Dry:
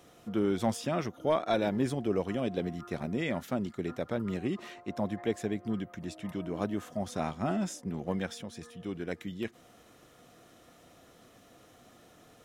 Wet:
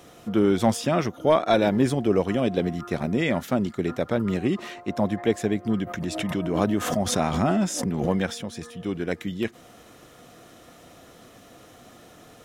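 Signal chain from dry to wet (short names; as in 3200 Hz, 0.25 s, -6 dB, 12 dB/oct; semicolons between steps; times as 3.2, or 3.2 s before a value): 5.82–8.4 backwards sustainer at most 49 dB/s; gain +8.5 dB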